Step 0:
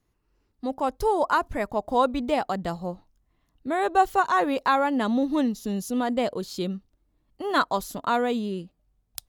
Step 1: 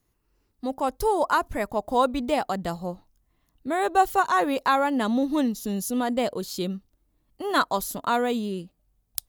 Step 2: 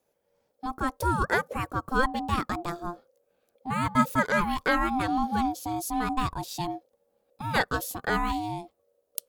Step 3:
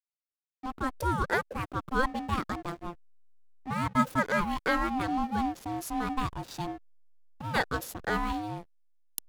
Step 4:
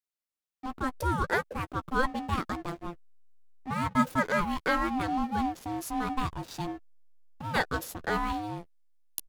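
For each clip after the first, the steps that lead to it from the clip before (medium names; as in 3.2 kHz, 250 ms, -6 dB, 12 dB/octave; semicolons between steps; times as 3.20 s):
treble shelf 8.4 kHz +11 dB
ring modulator 520 Hz
hysteresis with a dead band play -32.5 dBFS; trim -2.5 dB
doubling 12 ms -12.5 dB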